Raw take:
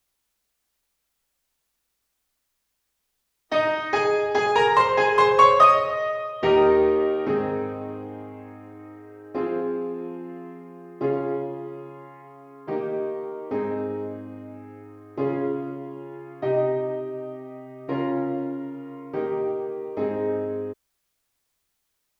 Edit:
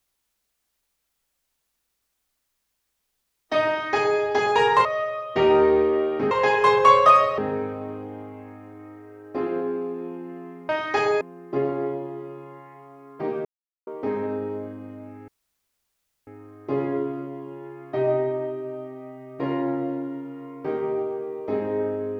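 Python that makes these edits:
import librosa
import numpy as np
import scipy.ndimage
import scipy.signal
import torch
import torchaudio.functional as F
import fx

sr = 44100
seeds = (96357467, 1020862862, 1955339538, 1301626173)

y = fx.edit(x, sr, fx.duplicate(start_s=3.68, length_s=0.52, to_s=10.69),
    fx.move(start_s=4.85, length_s=1.07, to_s=7.38),
    fx.silence(start_s=12.93, length_s=0.42),
    fx.insert_room_tone(at_s=14.76, length_s=0.99), tone=tone)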